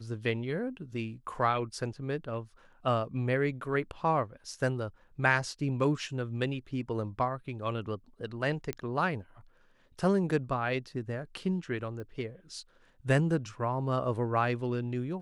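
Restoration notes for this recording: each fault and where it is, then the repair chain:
0:08.73: click −19 dBFS
0:12.00: click −31 dBFS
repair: click removal

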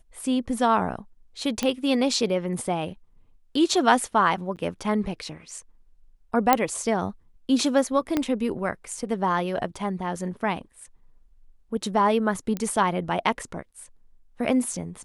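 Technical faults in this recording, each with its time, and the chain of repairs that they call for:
0:01.63: click −11 dBFS
0:04.56–0:04.57: drop-out 8.4 ms
0:06.53: click −3 dBFS
0:08.17: click −10 dBFS
0:12.57: click −16 dBFS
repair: click removal
repair the gap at 0:04.56, 8.4 ms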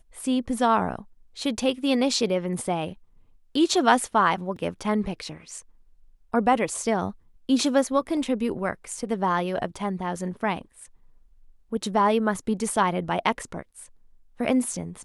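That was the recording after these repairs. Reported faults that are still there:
0:08.17: click

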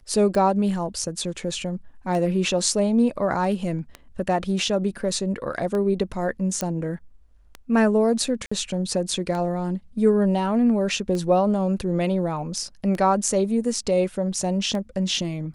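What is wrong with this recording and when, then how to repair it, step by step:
scratch tick 33 1/3 rpm
0:06.61: click −10 dBFS
0:08.46–0:08.52: drop-out 55 ms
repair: click removal
repair the gap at 0:08.46, 55 ms

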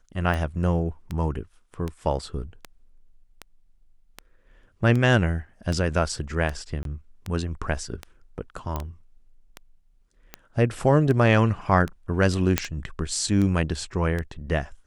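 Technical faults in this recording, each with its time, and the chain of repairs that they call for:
scratch tick 78 rpm −17 dBFS
0:06.83–0:06.85: drop-out 22 ms
0:08.76: click −15 dBFS
0:12.58: click −4 dBFS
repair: click removal
repair the gap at 0:06.83, 22 ms

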